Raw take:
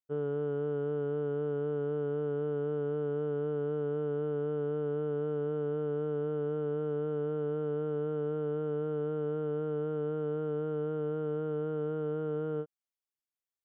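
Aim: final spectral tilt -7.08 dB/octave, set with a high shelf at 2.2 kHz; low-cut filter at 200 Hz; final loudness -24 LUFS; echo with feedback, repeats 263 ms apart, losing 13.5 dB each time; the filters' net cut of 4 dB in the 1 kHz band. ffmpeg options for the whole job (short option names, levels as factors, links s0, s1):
-af "highpass=200,equalizer=f=1000:t=o:g=-5,highshelf=f=2200:g=-3.5,aecho=1:1:263|526:0.211|0.0444,volume=3.55"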